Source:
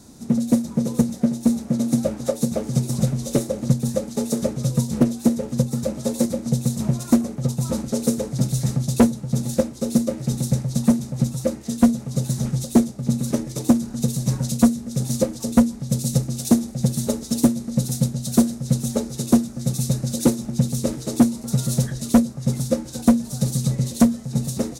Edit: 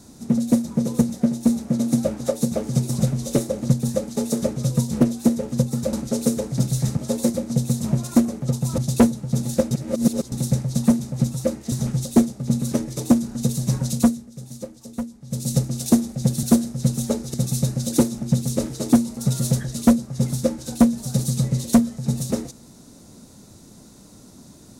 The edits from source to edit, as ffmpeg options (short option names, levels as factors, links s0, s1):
-filter_complex "[0:a]asplit=11[s0][s1][s2][s3][s4][s5][s6][s7][s8][s9][s10];[s0]atrim=end=5.932[s11];[s1]atrim=start=7.738:end=8.782[s12];[s2]atrim=start=5.928:end=7.742[s13];[s3]atrim=start=8.778:end=9.712[s14];[s4]atrim=start=9.708:end=10.322,asetpts=PTS-STARTPTS,areverse[s15];[s5]atrim=start=10.318:end=11.722[s16];[s6]atrim=start=12.308:end=14.89,asetpts=PTS-STARTPTS,afade=t=out:st=2.272:d=0.31:silence=0.211349[s17];[s7]atrim=start=14.89:end=15.81,asetpts=PTS-STARTPTS,volume=0.211[s18];[s8]atrim=start=15.81:end=17.022,asetpts=PTS-STARTPTS,afade=t=in:d=0.31:silence=0.211349[s19];[s9]atrim=start=18.288:end=19.202[s20];[s10]atrim=start=19.608[s21];[s11][s12]acrossfade=d=0.004:c1=hsin:c2=hsin[s22];[s22][s13]acrossfade=d=0.004:c1=hsin:c2=hsin[s23];[s23][s14]acrossfade=d=0.004:c1=hsin:c2=hsin[s24];[s24][s15]acrossfade=d=0.004:c1=hsin:c2=hsin[s25];[s25][s16]acrossfade=d=0.004:c1=hsin:c2=hsin[s26];[s17][s18][s19]concat=n=3:v=0:a=1[s27];[s26][s27]acrossfade=d=0.004:c1=hsin:c2=hsin[s28];[s28][s20]acrossfade=d=0.004:c1=hsin:c2=hsin[s29];[s29][s21]acrossfade=d=0.004:c1=hsin:c2=hsin"